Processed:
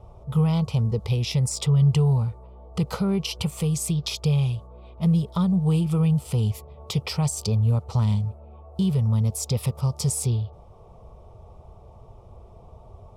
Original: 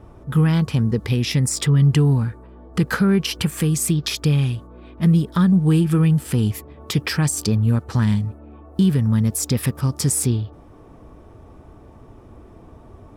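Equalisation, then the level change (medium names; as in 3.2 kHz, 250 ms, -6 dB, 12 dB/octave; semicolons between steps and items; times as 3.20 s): treble shelf 7.9 kHz -11.5 dB; static phaser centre 690 Hz, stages 4; 0.0 dB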